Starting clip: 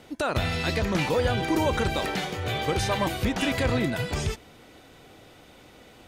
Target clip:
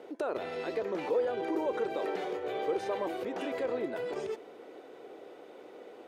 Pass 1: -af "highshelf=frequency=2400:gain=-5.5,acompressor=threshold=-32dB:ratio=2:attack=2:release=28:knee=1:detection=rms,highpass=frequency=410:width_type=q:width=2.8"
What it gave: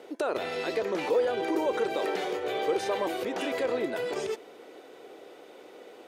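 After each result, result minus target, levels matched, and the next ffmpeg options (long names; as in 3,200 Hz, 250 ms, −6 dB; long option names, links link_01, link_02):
4,000 Hz band +5.5 dB; downward compressor: peak gain reduction −3.5 dB
-af "highshelf=frequency=2400:gain=-15,acompressor=threshold=-32dB:ratio=2:attack=2:release=28:knee=1:detection=rms,highpass=frequency=410:width_type=q:width=2.8"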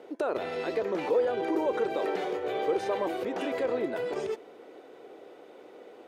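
downward compressor: peak gain reduction −3.5 dB
-af "highshelf=frequency=2400:gain=-15,acompressor=threshold=-39.5dB:ratio=2:attack=2:release=28:knee=1:detection=rms,highpass=frequency=410:width_type=q:width=2.8"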